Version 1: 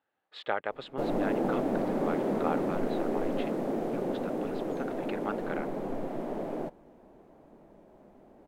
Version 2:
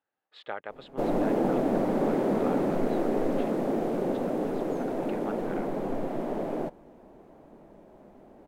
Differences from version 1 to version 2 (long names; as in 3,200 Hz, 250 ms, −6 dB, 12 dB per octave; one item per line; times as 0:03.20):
speech −5.5 dB
background +3.5 dB